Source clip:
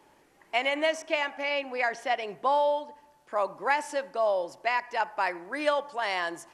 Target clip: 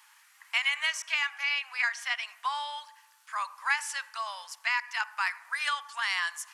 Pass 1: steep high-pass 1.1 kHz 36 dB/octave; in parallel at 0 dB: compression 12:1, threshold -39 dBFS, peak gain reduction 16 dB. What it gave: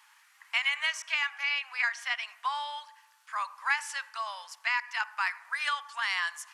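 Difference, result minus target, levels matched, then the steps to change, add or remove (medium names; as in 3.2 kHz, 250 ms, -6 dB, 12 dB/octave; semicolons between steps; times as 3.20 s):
8 kHz band -3.0 dB
add after steep high-pass: treble shelf 6.2 kHz +6.5 dB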